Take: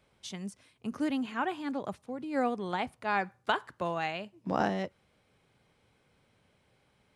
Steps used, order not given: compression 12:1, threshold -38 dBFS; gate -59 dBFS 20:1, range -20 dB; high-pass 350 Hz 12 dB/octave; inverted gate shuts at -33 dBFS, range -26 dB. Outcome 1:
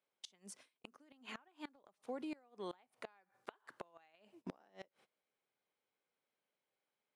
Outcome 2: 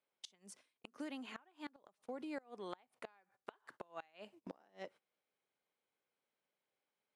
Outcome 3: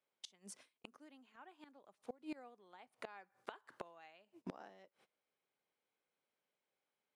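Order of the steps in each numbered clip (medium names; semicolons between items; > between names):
high-pass > gate > compression > inverted gate; compression > high-pass > gate > inverted gate; high-pass > gate > inverted gate > compression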